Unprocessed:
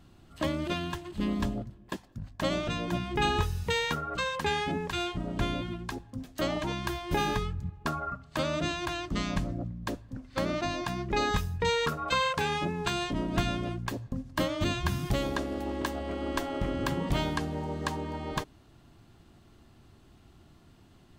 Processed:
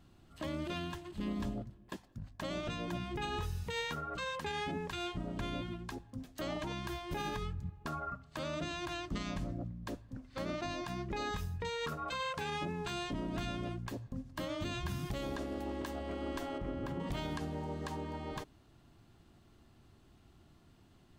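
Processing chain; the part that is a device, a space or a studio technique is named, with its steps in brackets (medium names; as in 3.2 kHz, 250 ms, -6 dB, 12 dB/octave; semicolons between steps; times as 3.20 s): clipper into limiter (hard clipper -16 dBFS, distortion -38 dB; peak limiter -23.5 dBFS, peak gain reduction 7.5 dB); 16.58–17.00 s: treble shelf 2.4 kHz -10.5 dB; trim -5.5 dB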